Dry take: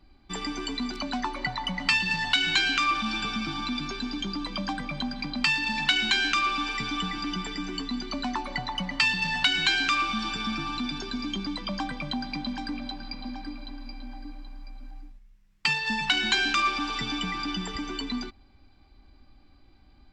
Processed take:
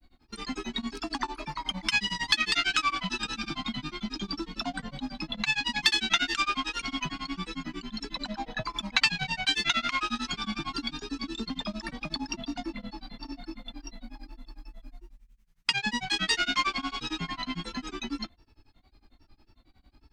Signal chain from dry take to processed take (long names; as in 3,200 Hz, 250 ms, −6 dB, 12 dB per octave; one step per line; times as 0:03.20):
high-shelf EQ 7,500 Hz +10.5 dB
granular cloud, grains 11 per second, spray 38 ms, pitch spread up and down by 3 semitones